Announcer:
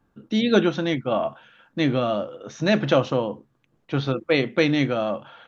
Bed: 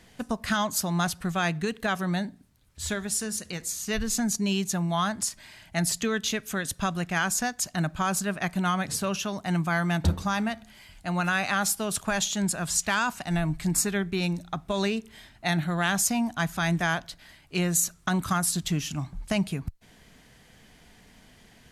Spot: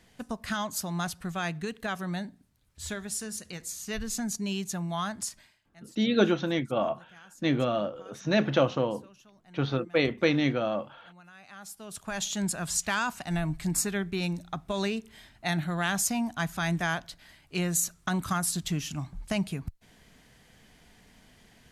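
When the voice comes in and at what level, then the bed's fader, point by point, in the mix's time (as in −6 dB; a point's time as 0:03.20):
5.65 s, −4.5 dB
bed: 0:05.39 −5.5 dB
0:05.63 −27 dB
0:11.32 −27 dB
0:12.31 −3 dB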